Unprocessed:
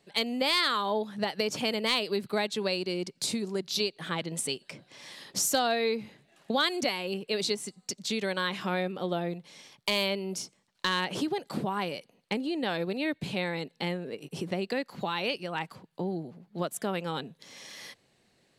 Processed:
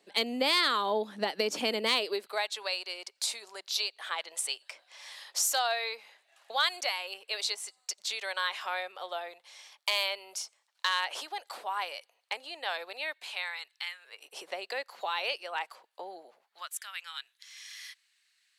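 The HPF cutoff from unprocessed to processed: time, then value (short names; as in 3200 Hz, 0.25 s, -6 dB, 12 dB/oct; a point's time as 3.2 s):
HPF 24 dB/oct
1.88 s 240 Hz
2.45 s 680 Hz
13.01 s 680 Hz
13.97 s 1400 Hz
14.3 s 580 Hz
16.33 s 580 Hz
16.74 s 1500 Hz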